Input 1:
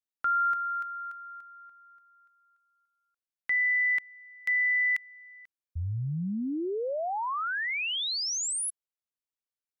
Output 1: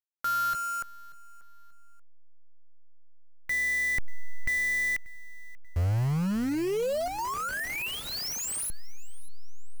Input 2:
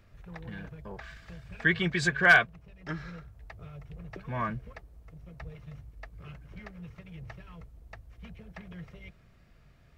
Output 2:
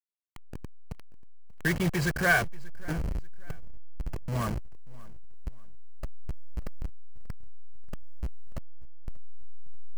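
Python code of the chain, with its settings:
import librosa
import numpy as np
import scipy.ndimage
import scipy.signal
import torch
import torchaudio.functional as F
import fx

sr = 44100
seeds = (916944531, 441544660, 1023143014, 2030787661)

p1 = fx.delta_hold(x, sr, step_db=-30.5)
p2 = fx.notch(p1, sr, hz=3600.0, q=6.1)
p3 = fx.dynamic_eq(p2, sr, hz=510.0, q=1.1, threshold_db=-47.0, ratio=4.0, max_db=4)
p4 = (np.mod(10.0 ** (22.5 / 20.0) * p3 + 1.0, 2.0) - 1.0) / 10.0 ** (22.5 / 20.0)
p5 = p3 + F.gain(torch.from_numpy(p4), -5.5).numpy()
p6 = fx.low_shelf(p5, sr, hz=200.0, db=10.5)
p7 = p6 + fx.echo_feedback(p6, sr, ms=586, feedback_pct=34, wet_db=-22, dry=0)
y = F.gain(torch.from_numpy(p7), -5.0).numpy()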